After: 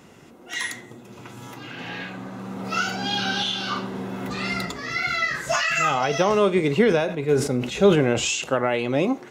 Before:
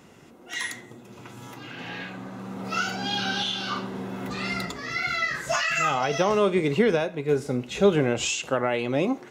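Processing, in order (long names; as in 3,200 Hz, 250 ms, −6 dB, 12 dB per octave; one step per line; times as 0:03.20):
0:06.79–0:08.44: level that may fall only so fast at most 83 dB per second
level +2.5 dB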